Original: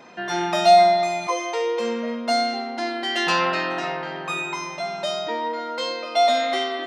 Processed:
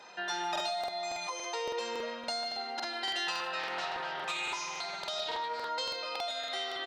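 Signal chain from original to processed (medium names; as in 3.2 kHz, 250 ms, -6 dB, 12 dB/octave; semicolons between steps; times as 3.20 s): graphic EQ 125/250/1000/4000/8000 Hz -5/-11/+7/+8/+6 dB; compression 6:1, threshold -24 dBFS, peak gain reduction 16.5 dB; band-stop 680 Hz, Q 15; comb of notches 1.1 kHz; speakerphone echo 150 ms, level -8 dB; crackling interface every 0.28 s, samples 2048, repeat, from 0.51 s; 3.59–5.69 s: loudspeaker Doppler distortion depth 0.32 ms; trim -7 dB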